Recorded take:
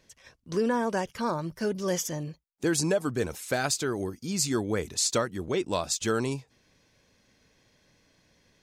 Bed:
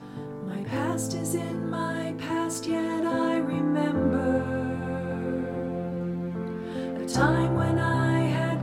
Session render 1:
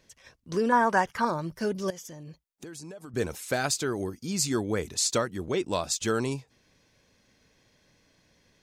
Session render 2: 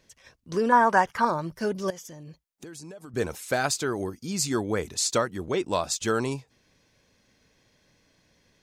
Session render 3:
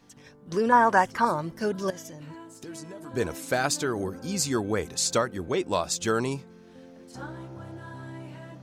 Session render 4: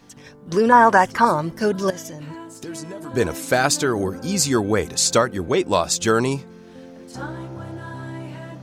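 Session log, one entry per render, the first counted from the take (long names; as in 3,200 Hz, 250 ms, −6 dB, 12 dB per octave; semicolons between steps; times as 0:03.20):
0:00.72–0:01.25: flat-topped bell 1,200 Hz +9.5 dB; 0:01.90–0:03.14: downward compressor 12 to 1, threshold −39 dBFS
dynamic equaliser 960 Hz, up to +4 dB, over −38 dBFS, Q 0.72
mix in bed −17 dB
level +7.5 dB; brickwall limiter −2 dBFS, peak gain reduction 3 dB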